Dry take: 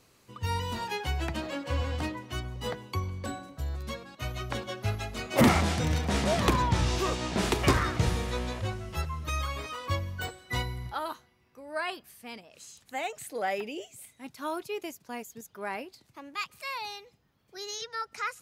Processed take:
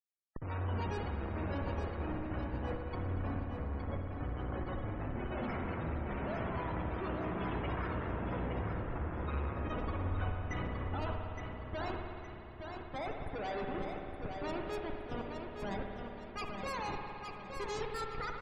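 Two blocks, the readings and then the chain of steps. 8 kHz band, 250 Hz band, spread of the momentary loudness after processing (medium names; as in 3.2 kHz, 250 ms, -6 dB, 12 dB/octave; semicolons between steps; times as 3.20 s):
under -20 dB, -7.0 dB, 6 LU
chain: Schmitt trigger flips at -34.5 dBFS; peak limiter -34.5 dBFS, peak gain reduction 9 dB; loudest bins only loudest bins 64; level held to a coarse grid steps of 11 dB; on a send: feedback delay 866 ms, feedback 40%, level -6 dB; on the sum: spring tank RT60 2.9 s, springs 55 ms, chirp 60 ms, DRR 2 dB; trim +4.5 dB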